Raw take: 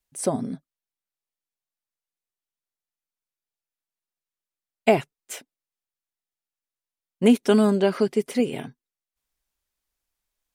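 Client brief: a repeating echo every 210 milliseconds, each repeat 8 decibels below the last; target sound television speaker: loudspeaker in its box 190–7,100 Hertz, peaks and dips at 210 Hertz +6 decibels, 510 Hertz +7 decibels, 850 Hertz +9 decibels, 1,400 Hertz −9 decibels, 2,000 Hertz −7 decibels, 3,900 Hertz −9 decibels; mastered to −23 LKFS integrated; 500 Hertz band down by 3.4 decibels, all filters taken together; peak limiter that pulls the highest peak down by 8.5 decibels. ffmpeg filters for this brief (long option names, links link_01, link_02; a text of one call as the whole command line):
ffmpeg -i in.wav -af "equalizer=frequency=500:width_type=o:gain=-8.5,alimiter=limit=-16dB:level=0:latency=1,highpass=frequency=190:width=0.5412,highpass=frequency=190:width=1.3066,equalizer=frequency=210:width_type=q:width=4:gain=6,equalizer=frequency=510:width_type=q:width=4:gain=7,equalizer=frequency=850:width_type=q:width=4:gain=9,equalizer=frequency=1400:width_type=q:width=4:gain=-9,equalizer=frequency=2000:width_type=q:width=4:gain=-7,equalizer=frequency=3900:width_type=q:width=4:gain=-9,lowpass=frequency=7100:width=0.5412,lowpass=frequency=7100:width=1.3066,aecho=1:1:210|420|630|840|1050:0.398|0.159|0.0637|0.0255|0.0102,volume=2.5dB" out.wav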